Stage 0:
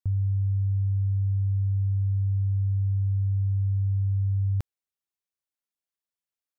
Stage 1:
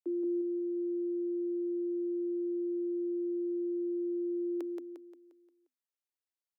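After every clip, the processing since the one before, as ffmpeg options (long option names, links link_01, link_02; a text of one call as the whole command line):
ffmpeg -i in.wav -filter_complex "[0:a]afreqshift=250,asplit=2[link_01][link_02];[link_02]aecho=0:1:176|352|528|704|880|1056:0.668|0.294|0.129|0.0569|0.0251|0.011[link_03];[link_01][link_03]amix=inputs=2:normalize=0,volume=-8.5dB" out.wav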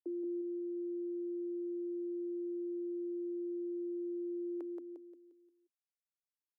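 ffmpeg -i in.wav -af "acompressor=threshold=-43dB:ratio=1.5,afftdn=noise_reduction=13:noise_floor=-60,volume=-1.5dB" out.wav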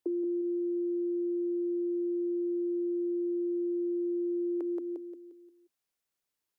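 ffmpeg -i in.wav -af "acompressor=threshold=-41dB:ratio=6,equalizer=frequency=400:width_type=o:width=0.77:gain=3,volume=9dB" out.wav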